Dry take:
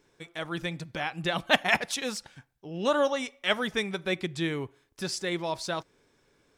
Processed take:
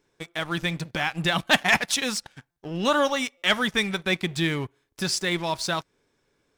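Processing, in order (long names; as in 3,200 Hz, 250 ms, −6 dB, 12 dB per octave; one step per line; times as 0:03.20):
dynamic equaliser 480 Hz, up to −7 dB, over −42 dBFS, Q 1
leveller curve on the samples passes 2
buffer that repeats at 0:02.51/0:03.37, samples 256, times 8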